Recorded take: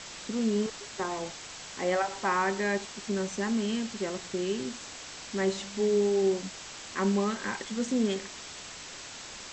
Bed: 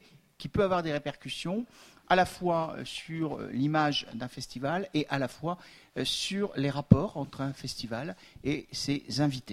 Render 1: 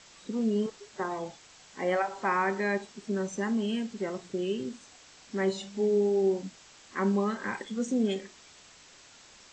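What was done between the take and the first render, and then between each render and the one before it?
noise reduction from a noise print 11 dB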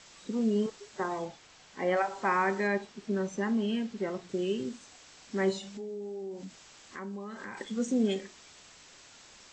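0:01.25–0:01.97: high-frequency loss of the air 60 metres
0:02.67–0:04.29: high-frequency loss of the air 71 metres
0:05.58–0:07.57: downward compressor 4 to 1, threshold −39 dBFS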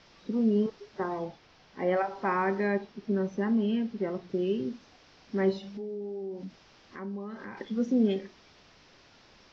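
elliptic low-pass filter 5,500 Hz, stop band 50 dB
tilt shelving filter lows +4.5 dB, about 890 Hz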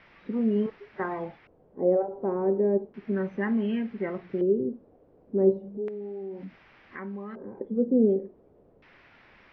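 auto-filter low-pass square 0.34 Hz 480–2,100 Hz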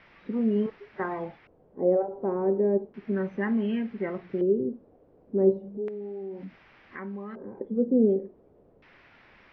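no processing that can be heard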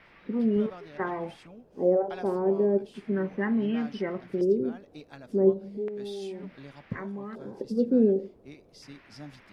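mix in bed −17 dB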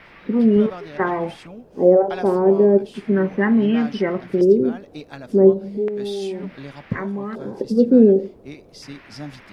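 level +10 dB
brickwall limiter −3 dBFS, peak gain reduction 2.5 dB

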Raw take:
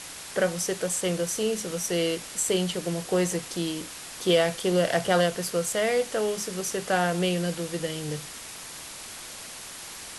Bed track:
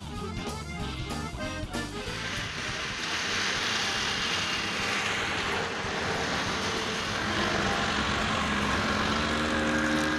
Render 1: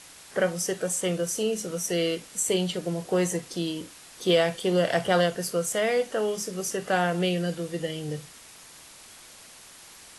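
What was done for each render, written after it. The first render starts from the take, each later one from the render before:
noise reduction from a noise print 8 dB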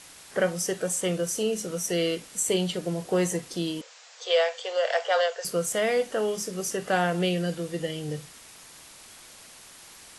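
0:03.81–0:05.45: Chebyshev band-pass filter 470–7,400 Hz, order 5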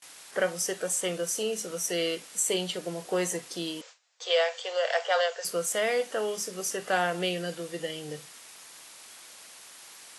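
high-pass filter 490 Hz 6 dB per octave
noise gate with hold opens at −39 dBFS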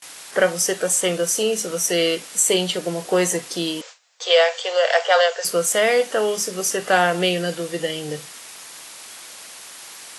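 level +9.5 dB

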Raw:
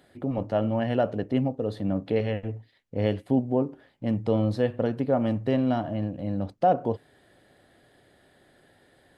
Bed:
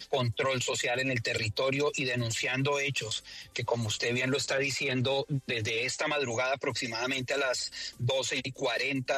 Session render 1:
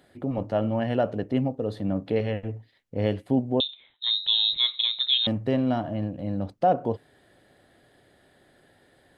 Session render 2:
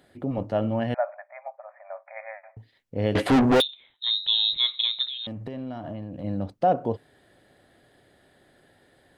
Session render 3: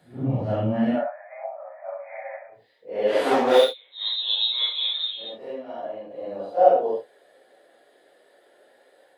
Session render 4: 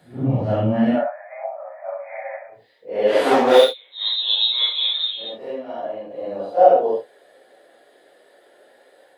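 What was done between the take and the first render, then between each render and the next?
0:03.60–0:05.27: voice inversion scrambler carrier 3,900 Hz
0:00.94–0:02.57: linear-phase brick-wall band-pass 560–2,500 Hz; 0:03.15–0:03.62: mid-hump overdrive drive 37 dB, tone 3,100 Hz, clips at −11 dBFS; 0:05.08–0:06.24: downward compressor 16 to 1, threshold −30 dBFS
random phases in long frames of 200 ms; high-pass filter sweep 120 Hz → 500 Hz, 0:00.56–0:01.49
level +4.5 dB; brickwall limiter −1 dBFS, peak gain reduction 2.5 dB

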